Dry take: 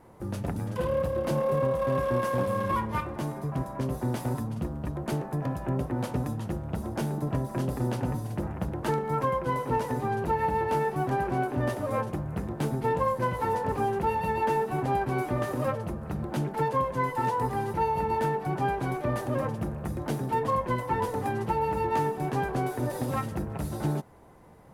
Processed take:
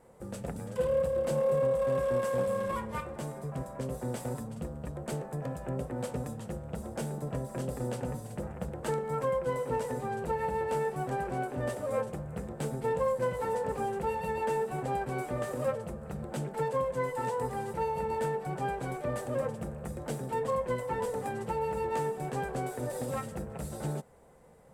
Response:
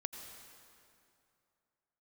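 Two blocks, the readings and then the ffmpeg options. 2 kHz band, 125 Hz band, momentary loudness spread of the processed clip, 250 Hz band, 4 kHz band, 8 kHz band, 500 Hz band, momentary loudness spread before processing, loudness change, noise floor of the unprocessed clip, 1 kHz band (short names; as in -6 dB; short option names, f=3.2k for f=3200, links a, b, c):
-5.0 dB, -7.0 dB, 10 LU, -7.0 dB, -4.5 dB, +0.5 dB, -1.0 dB, 6 LU, -4.0 dB, -39 dBFS, -6.5 dB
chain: -af "equalizer=f=100:t=o:w=0.33:g=-9,equalizer=f=315:t=o:w=0.33:g=-8,equalizer=f=500:t=o:w=0.33:g=8,equalizer=f=1k:t=o:w=0.33:g=-4,equalizer=f=8k:t=o:w=0.33:g=12,volume=-5dB"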